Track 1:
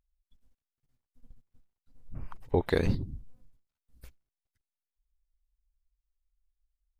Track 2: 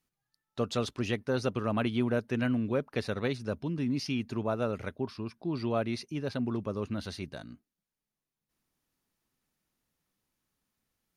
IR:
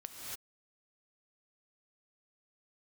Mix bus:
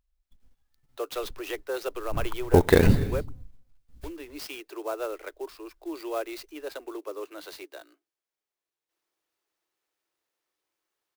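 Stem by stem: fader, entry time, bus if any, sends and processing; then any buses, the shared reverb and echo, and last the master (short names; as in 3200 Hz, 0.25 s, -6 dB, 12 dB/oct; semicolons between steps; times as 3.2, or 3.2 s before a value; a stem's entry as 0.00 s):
+1.5 dB, 0.00 s, send -10.5 dB, AGC gain up to 6 dB
0.0 dB, 0.40 s, muted 3.3–4.03, no send, steep high-pass 310 Hz 96 dB/oct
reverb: on, pre-delay 3 ms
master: clock jitter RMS 0.026 ms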